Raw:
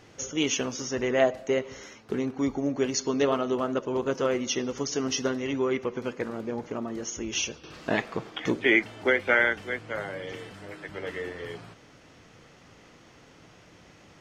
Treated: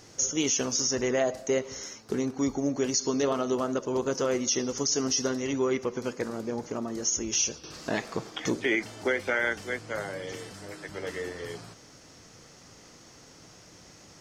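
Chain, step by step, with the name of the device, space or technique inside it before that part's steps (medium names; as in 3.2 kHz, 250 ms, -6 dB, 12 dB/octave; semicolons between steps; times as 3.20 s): over-bright horn tweeter (resonant high shelf 4 kHz +8.5 dB, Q 1.5; peak limiter -16.5 dBFS, peak gain reduction 9.5 dB)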